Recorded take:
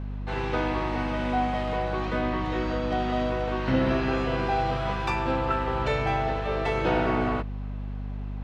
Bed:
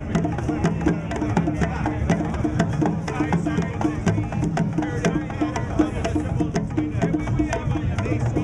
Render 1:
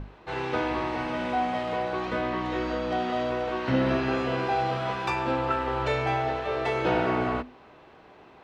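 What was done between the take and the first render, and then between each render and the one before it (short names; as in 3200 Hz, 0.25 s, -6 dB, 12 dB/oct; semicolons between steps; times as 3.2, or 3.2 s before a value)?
notches 50/100/150/200/250 Hz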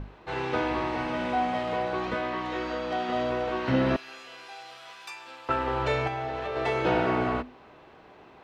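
2.14–3.09 low shelf 320 Hz -8 dB; 3.96–5.49 differentiator; 6.07–6.56 compressor, threshold -28 dBFS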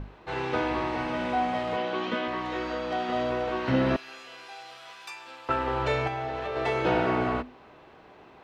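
1.77–2.28 speaker cabinet 200–7500 Hz, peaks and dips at 230 Hz +9 dB, 760 Hz -3 dB, 3100 Hz +8 dB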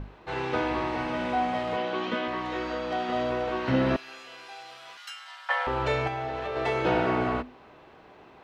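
4.97–5.67 frequency shift +440 Hz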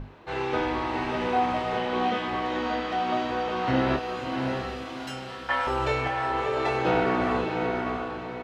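doubler 28 ms -6.5 dB; on a send: diffused feedback echo 0.658 s, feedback 41%, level -4 dB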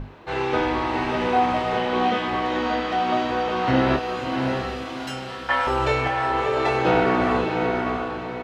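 gain +4.5 dB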